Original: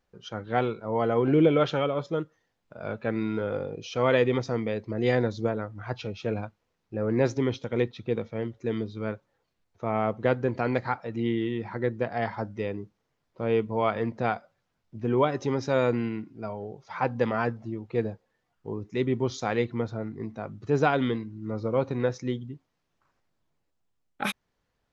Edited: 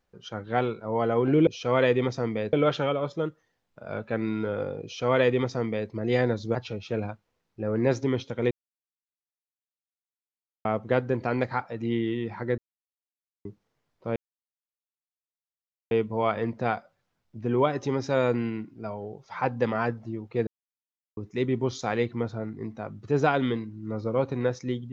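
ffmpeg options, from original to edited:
ffmpeg -i in.wav -filter_complex "[0:a]asplit=11[link_01][link_02][link_03][link_04][link_05][link_06][link_07][link_08][link_09][link_10][link_11];[link_01]atrim=end=1.472[link_12];[link_02]atrim=start=3.778:end=4.842[link_13];[link_03]atrim=start=1.468:end=5.492[link_14];[link_04]atrim=start=5.888:end=7.85,asetpts=PTS-STARTPTS,afade=type=out:start_time=1.958:duration=0.004:curve=hsin[link_15];[link_05]atrim=start=7.85:end=9.99,asetpts=PTS-STARTPTS,volume=0[link_16];[link_06]atrim=start=9.99:end=11.92,asetpts=PTS-STARTPTS,afade=type=in:duration=0.004:curve=hsin,afade=type=out:start_time=1.926:duration=0.004:curve=hsin[link_17];[link_07]atrim=start=11.92:end=12.79,asetpts=PTS-STARTPTS,volume=0[link_18];[link_08]atrim=start=12.79:end=13.5,asetpts=PTS-STARTPTS,afade=type=in:duration=0.004:curve=hsin,afade=type=out:start_time=0.706:duration=0.004:curve=hsin,apad=pad_dur=1.75[link_19];[link_09]atrim=start=13.5:end=18.06,asetpts=PTS-STARTPTS,afade=type=in:duration=0.004:curve=hsin,afade=type=out:start_time=4.556:duration=0.004:curve=hsin[link_20];[link_10]atrim=start=18.06:end=18.76,asetpts=PTS-STARTPTS,volume=0[link_21];[link_11]atrim=start=18.76,asetpts=PTS-STARTPTS,afade=type=in:duration=0.004:curve=hsin[link_22];[link_12][link_13]acrossfade=duration=0.004:curve1=hsin:curve2=hsin[link_23];[link_23][link_14]acrossfade=duration=0.004:curve1=hsin:curve2=hsin[link_24];[link_15][link_16][link_17][link_18][link_19][link_20][link_21][link_22]concat=n=8:v=0:a=1[link_25];[link_24][link_25]acrossfade=duration=0.004:curve1=hsin:curve2=hsin" out.wav

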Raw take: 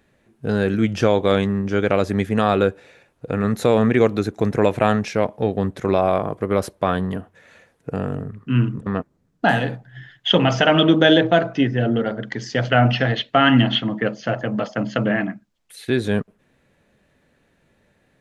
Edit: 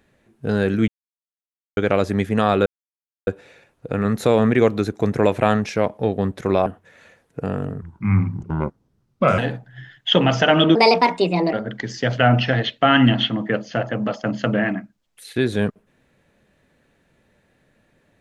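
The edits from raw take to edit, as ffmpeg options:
ffmpeg -i in.wav -filter_complex "[0:a]asplit=9[link_01][link_02][link_03][link_04][link_05][link_06][link_07][link_08][link_09];[link_01]atrim=end=0.88,asetpts=PTS-STARTPTS,afade=type=out:start_time=0.876:duration=0.004:curve=hsin[link_10];[link_02]atrim=start=0.88:end=1.77,asetpts=PTS-STARTPTS,volume=0[link_11];[link_03]atrim=start=1.77:end=2.66,asetpts=PTS-STARTPTS,afade=type=in:duration=0.004:curve=hsin,afade=type=out:start_time=0.886:duration=0.004:curve=hsin,apad=pad_dur=0.61[link_12];[link_04]atrim=start=2.66:end=6.052,asetpts=PTS-STARTPTS,afade=type=in:duration=0.004:curve=hsin[link_13];[link_05]atrim=start=7.158:end=8.324[link_14];[link_06]atrim=start=8.32:end=9.57,asetpts=PTS-STARTPTS,asetrate=35280,aresample=44100,atrim=end_sample=68906,asetpts=PTS-STARTPTS[link_15];[link_07]atrim=start=9.566:end=10.944[link_16];[link_08]atrim=start=10.94:end=12.05,asetpts=PTS-STARTPTS,asetrate=63063,aresample=44100,atrim=end_sample=34231,asetpts=PTS-STARTPTS[link_17];[link_09]atrim=start=12.046[link_18];[link_10][link_11][link_12][link_13]concat=n=4:v=0:a=1[link_19];[link_19][link_14]acrossfade=duration=0.004:curve1=hsin:curve2=hsin[link_20];[link_20][link_15]acrossfade=duration=0.004:curve1=hsin:curve2=hsin[link_21];[link_21][link_16]acrossfade=duration=0.004:curve1=hsin:curve2=hsin[link_22];[link_22][link_17]acrossfade=duration=0.004:curve1=hsin:curve2=hsin[link_23];[link_23][link_18]acrossfade=duration=0.004:curve1=hsin:curve2=hsin" out.wav

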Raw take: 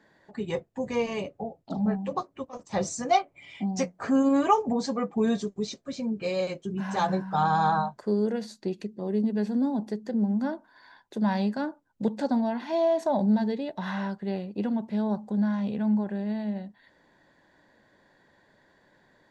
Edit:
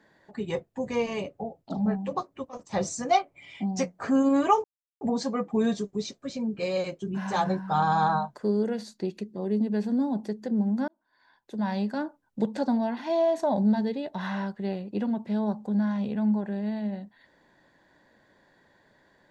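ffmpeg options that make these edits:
ffmpeg -i in.wav -filter_complex "[0:a]asplit=3[link_01][link_02][link_03];[link_01]atrim=end=4.64,asetpts=PTS-STARTPTS,afade=type=out:start_time=4.636:duration=0.004:curve=hsin,apad=pad_dur=0.37[link_04];[link_02]atrim=start=4.64:end=10.51,asetpts=PTS-STARTPTS,afade=type=in:duration=0.004:curve=hsin,afade=type=out:start_time=5.866:duration=0.004:curve=hsin[link_05];[link_03]atrim=start=10.51,asetpts=PTS-STARTPTS,afade=type=in:duration=1.14[link_06];[link_04][link_05][link_06]concat=n=3:v=0:a=1" out.wav

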